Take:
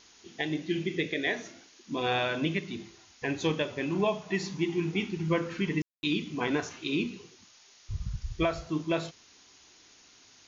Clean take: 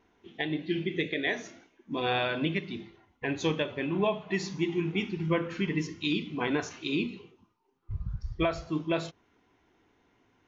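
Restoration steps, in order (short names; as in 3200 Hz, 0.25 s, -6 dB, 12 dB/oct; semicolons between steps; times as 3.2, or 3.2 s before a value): room tone fill 5.82–6.03; noise print and reduce 10 dB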